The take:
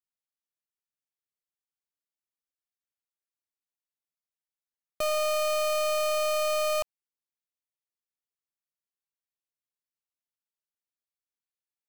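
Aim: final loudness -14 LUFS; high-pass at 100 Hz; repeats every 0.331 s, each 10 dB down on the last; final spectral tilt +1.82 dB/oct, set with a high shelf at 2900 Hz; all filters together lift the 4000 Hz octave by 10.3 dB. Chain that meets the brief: HPF 100 Hz; high shelf 2900 Hz +7.5 dB; bell 4000 Hz +7 dB; feedback echo 0.331 s, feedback 32%, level -10 dB; gain +8.5 dB

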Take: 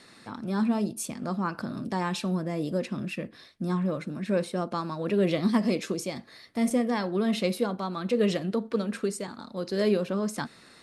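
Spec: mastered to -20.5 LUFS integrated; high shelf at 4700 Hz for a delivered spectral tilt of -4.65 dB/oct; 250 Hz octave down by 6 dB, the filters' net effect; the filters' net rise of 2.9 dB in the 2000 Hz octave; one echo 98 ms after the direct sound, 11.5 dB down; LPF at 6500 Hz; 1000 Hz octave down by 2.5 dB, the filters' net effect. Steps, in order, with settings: LPF 6500 Hz; bell 250 Hz -8 dB; bell 1000 Hz -4 dB; bell 2000 Hz +6.5 dB; high shelf 4700 Hz -8.5 dB; echo 98 ms -11.5 dB; gain +12 dB

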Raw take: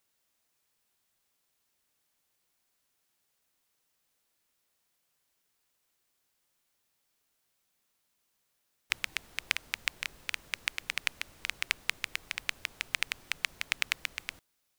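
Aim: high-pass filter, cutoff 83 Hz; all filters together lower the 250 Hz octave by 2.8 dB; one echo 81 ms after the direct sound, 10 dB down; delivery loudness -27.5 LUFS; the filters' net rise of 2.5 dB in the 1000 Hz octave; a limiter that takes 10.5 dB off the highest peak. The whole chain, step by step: HPF 83 Hz; bell 250 Hz -4 dB; bell 1000 Hz +3.5 dB; limiter -14 dBFS; echo 81 ms -10 dB; gain +12.5 dB

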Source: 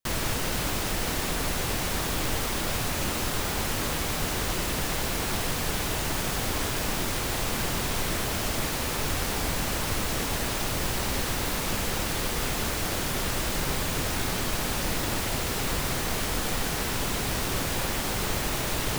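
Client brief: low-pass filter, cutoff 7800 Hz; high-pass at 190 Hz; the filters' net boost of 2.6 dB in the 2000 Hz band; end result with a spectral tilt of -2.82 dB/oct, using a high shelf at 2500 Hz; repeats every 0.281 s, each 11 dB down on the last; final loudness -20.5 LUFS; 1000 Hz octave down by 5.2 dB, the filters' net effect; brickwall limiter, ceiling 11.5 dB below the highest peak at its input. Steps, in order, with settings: HPF 190 Hz; LPF 7800 Hz; bell 1000 Hz -8.5 dB; bell 2000 Hz +8.5 dB; high shelf 2500 Hz -6 dB; limiter -30 dBFS; feedback echo 0.281 s, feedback 28%, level -11 dB; gain +16.5 dB

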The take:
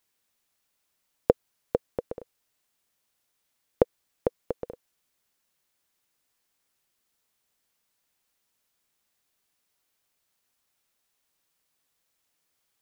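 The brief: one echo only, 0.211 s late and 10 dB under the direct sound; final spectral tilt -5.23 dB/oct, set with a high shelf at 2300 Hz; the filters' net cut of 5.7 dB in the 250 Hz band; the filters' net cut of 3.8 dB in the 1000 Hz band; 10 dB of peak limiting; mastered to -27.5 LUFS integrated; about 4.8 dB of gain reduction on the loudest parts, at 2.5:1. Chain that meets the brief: bell 250 Hz -8 dB; bell 1000 Hz -3.5 dB; high shelf 2300 Hz -7.5 dB; compressor 2.5:1, threshold -26 dBFS; limiter -19.5 dBFS; echo 0.211 s -10 dB; gain +17.5 dB

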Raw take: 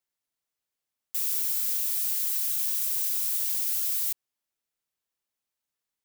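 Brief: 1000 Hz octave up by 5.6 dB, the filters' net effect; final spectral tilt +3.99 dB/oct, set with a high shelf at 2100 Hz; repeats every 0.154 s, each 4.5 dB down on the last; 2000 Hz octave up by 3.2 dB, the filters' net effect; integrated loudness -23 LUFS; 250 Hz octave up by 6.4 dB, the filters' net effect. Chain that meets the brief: bell 250 Hz +8 dB; bell 1000 Hz +6.5 dB; bell 2000 Hz +7 dB; high shelf 2100 Hz -7.5 dB; feedback echo 0.154 s, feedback 60%, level -4.5 dB; gain +7.5 dB

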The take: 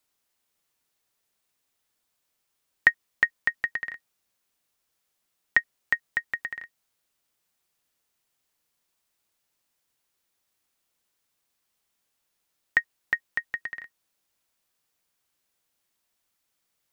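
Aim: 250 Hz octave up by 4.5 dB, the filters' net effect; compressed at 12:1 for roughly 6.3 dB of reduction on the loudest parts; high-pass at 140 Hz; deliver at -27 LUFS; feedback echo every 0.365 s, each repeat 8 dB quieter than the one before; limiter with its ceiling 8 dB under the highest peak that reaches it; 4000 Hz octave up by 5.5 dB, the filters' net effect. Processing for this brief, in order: HPF 140 Hz; bell 250 Hz +6.5 dB; bell 4000 Hz +7.5 dB; compressor 12:1, threshold -20 dBFS; limiter -10.5 dBFS; feedback echo 0.365 s, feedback 40%, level -8 dB; gain +6.5 dB

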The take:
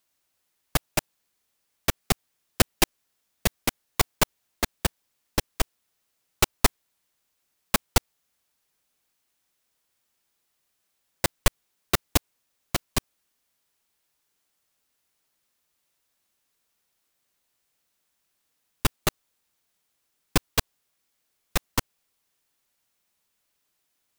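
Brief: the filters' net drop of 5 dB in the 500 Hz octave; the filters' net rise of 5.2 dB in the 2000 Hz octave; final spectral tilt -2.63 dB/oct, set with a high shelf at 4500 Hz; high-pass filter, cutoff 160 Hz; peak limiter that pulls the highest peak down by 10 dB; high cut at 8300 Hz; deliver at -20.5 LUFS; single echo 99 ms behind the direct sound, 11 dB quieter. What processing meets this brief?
HPF 160 Hz; LPF 8300 Hz; bell 500 Hz -7 dB; bell 2000 Hz +8.5 dB; high shelf 4500 Hz -8.5 dB; limiter -15 dBFS; echo 99 ms -11 dB; gain +14 dB

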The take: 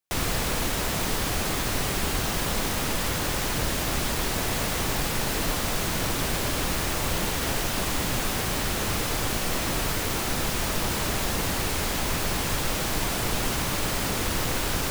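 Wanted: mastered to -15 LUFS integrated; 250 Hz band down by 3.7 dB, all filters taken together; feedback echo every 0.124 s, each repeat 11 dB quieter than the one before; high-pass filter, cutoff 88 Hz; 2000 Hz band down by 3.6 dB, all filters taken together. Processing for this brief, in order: HPF 88 Hz; bell 250 Hz -5 dB; bell 2000 Hz -4.5 dB; feedback echo 0.124 s, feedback 28%, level -11 dB; gain +12 dB

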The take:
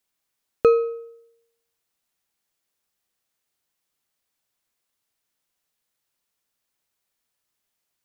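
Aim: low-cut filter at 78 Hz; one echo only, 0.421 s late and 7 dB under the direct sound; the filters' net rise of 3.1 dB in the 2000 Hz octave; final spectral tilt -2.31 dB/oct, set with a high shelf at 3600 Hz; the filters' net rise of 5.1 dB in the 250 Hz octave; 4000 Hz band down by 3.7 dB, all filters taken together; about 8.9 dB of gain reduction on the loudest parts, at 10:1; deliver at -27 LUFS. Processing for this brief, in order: HPF 78 Hz; bell 250 Hz +7 dB; bell 2000 Hz +6.5 dB; high shelf 3600 Hz +5 dB; bell 4000 Hz -9 dB; compressor 10:1, threshold -18 dBFS; echo 0.421 s -7 dB; gain +0.5 dB

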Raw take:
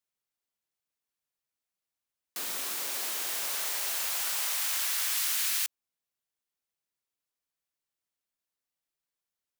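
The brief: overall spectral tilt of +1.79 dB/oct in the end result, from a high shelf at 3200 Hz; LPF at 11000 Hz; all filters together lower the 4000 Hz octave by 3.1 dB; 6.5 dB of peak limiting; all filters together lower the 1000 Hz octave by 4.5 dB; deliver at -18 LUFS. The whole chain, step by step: LPF 11000 Hz; bell 1000 Hz -6 dB; high shelf 3200 Hz +3.5 dB; bell 4000 Hz -6.5 dB; gain +15 dB; limiter -10.5 dBFS

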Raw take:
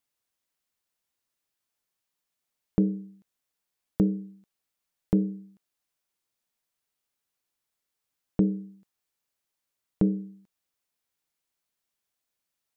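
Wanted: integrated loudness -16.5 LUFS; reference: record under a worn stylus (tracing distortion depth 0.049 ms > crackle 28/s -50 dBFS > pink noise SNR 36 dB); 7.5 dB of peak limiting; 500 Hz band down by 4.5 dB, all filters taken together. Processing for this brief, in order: bell 500 Hz -6 dB; limiter -20 dBFS; tracing distortion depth 0.049 ms; crackle 28/s -50 dBFS; pink noise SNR 36 dB; gain +17 dB

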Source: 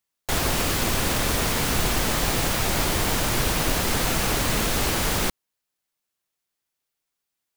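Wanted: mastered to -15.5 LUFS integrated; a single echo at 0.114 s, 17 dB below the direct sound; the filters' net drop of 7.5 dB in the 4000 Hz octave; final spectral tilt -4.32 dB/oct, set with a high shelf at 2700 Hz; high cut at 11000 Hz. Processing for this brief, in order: LPF 11000 Hz; high shelf 2700 Hz -4.5 dB; bell 4000 Hz -6 dB; echo 0.114 s -17 dB; gain +10.5 dB

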